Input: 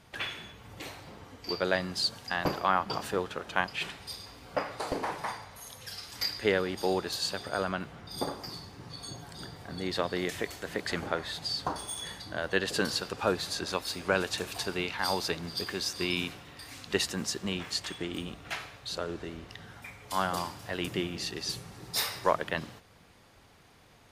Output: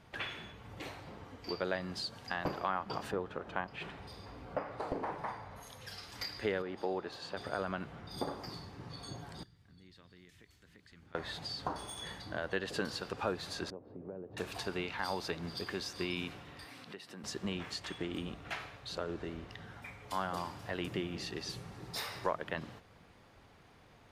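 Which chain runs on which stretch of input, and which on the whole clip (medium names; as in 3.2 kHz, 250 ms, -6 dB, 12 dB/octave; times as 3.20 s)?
3.11–5.63 s: treble shelf 2.2 kHz -11 dB + upward compressor, threshold -40 dBFS
6.62–7.37 s: low-pass 1.7 kHz 6 dB/octave + bass shelf 160 Hz -11.5 dB
9.43–11.15 s: amplifier tone stack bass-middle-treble 6-0-2 + compression 2:1, threshold -55 dBFS
13.70–14.37 s: Chebyshev band-pass 110–480 Hz + compression 4:1, threshold -41 dBFS
16.65–17.24 s: peaking EQ 6.8 kHz -9.5 dB 0.26 oct + compression, threshold -43 dBFS + high-pass 130 Hz 24 dB/octave
whole clip: compression 2:1, threshold -33 dBFS; treble shelf 4.4 kHz -10.5 dB; trim -1 dB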